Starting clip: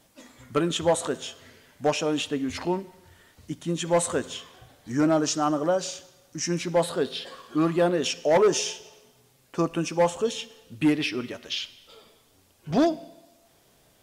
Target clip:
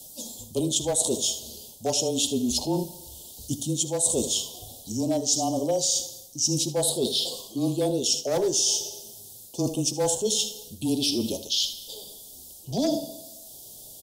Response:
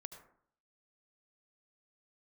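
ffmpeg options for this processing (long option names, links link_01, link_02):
-filter_complex "[0:a]asuperstop=centerf=1700:order=8:qfactor=0.67,aecho=1:1:79:0.2,acrossover=split=390|3200[link_01][link_02][link_03];[link_02]aeval=exprs='clip(val(0),-1,0.106)':channel_layout=same[link_04];[link_01][link_04][link_03]amix=inputs=3:normalize=0,crystalizer=i=4:c=0,areverse,acompressor=threshold=-28dB:ratio=6,areverse,afreqshift=-20,bandreject=frequency=95.48:width_type=h:width=4,bandreject=frequency=190.96:width_type=h:width=4,bandreject=frequency=286.44:width_type=h:width=4,bandreject=frequency=381.92:width_type=h:width=4,bandreject=frequency=477.4:width_type=h:width=4,bandreject=frequency=572.88:width_type=h:width=4,bandreject=frequency=668.36:width_type=h:width=4,bandreject=frequency=763.84:width_type=h:width=4,bandreject=frequency=859.32:width_type=h:width=4,bandreject=frequency=954.8:width_type=h:width=4,bandreject=frequency=1050.28:width_type=h:width=4,bandreject=frequency=1145.76:width_type=h:width=4,bandreject=frequency=1241.24:width_type=h:width=4,bandreject=frequency=1336.72:width_type=h:width=4,bandreject=frequency=1432.2:width_type=h:width=4,bandreject=frequency=1527.68:width_type=h:width=4,bandreject=frequency=1623.16:width_type=h:width=4,bandreject=frequency=1718.64:width_type=h:width=4,bandreject=frequency=1814.12:width_type=h:width=4,bandreject=frequency=1909.6:width_type=h:width=4,bandreject=frequency=2005.08:width_type=h:width=4,bandreject=frequency=2100.56:width_type=h:width=4,volume=6dB"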